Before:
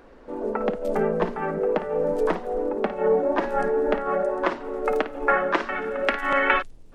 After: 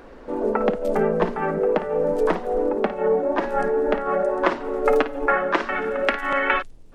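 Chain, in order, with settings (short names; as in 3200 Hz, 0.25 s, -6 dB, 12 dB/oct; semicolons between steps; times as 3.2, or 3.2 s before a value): vocal rider within 4 dB 0.5 s; 4.85–5.26 comb 7.2 ms, depth 64%; gain +2 dB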